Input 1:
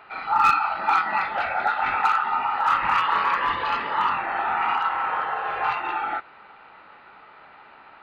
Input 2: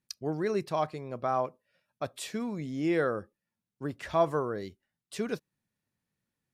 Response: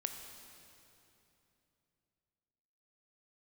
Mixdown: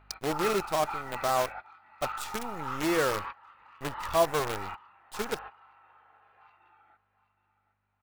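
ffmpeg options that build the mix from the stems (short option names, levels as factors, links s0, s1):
-filter_complex "[0:a]aeval=exprs='val(0)+0.00794*(sin(2*PI*50*n/s)+sin(2*PI*2*50*n/s)/2+sin(2*PI*3*50*n/s)/3+sin(2*PI*4*50*n/s)/4+sin(2*PI*5*50*n/s)/5)':c=same,volume=0.158,asplit=2[s0][s1];[s1]volume=0.112[s2];[1:a]asubboost=boost=9:cutoff=67,acrusher=bits=6:dc=4:mix=0:aa=0.000001,volume=1.26,asplit=2[s3][s4];[s4]apad=whole_len=354021[s5];[s0][s5]sidechaingate=range=0.0631:threshold=0.00501:ratio=16:detection=peak[s6];[s2]aecho=0:1:769|1538|2307:1|0.2|0.04[s7];[s6][s3][s7]amix=inputs=3:normalize=0,equalizer=f=170:w=0.99:g=-3.5"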